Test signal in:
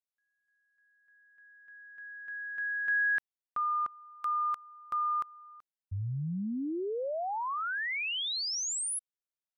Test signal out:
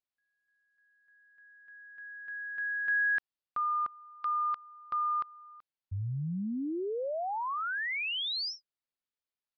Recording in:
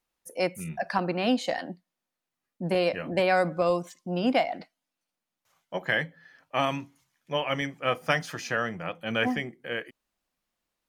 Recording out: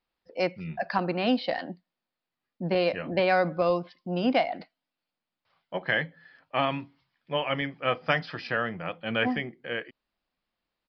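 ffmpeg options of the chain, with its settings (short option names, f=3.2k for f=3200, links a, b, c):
-af "aresample=11025,aresample=44100"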